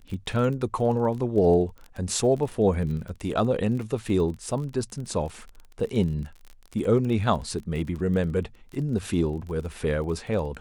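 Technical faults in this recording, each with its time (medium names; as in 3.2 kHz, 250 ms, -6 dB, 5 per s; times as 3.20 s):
crackle 29 per s -33 dBFS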